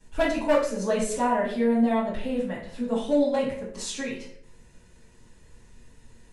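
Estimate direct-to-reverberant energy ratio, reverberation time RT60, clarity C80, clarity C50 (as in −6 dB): −11.5 dB, 0.65 s, 9.0 dB, 5.0 dB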